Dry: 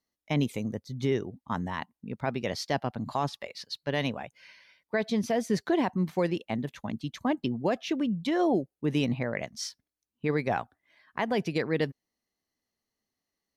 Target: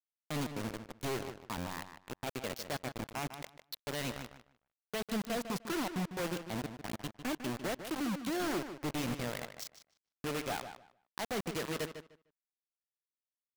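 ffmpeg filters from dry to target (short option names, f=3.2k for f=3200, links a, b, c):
-filter_complex "[0:a]aeval=exprs='0.075*(abs(mod(val(0)/0.075+3,4)-2)-1)':c=same,acrusher=bits=4:mix=0:aa=0.000001,asplit=2[a][b];[b]adelay=151,lowpass=f=4.5k:p=1,volume=-9.5dB,asplit=2[c][d];[d]adelay=151,lowpass=f=4.5k:p=1,volume=0.19,asplit=2[e][f];[f]adelay=151,lowpass=f=4.5k:p=1,volume=0.19[g];[a][c][e][g]amix=inputs=4:normalize=0,volume=-8dB"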